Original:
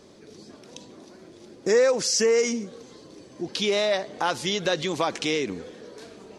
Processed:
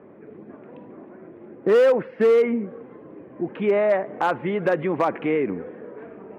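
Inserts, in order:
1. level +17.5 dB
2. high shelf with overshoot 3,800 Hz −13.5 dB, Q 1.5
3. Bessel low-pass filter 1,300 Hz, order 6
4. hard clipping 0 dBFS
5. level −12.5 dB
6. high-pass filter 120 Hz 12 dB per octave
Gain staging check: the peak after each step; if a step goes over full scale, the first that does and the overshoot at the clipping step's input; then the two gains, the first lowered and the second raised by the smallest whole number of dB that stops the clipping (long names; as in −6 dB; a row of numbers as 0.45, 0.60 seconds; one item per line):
+7.0, +7.5, +6.0, 0.0, −12.5, −10.0 dBFS
step 1, 6.0 dB
step 1 +11.5 dB, step 5 −6.5 dB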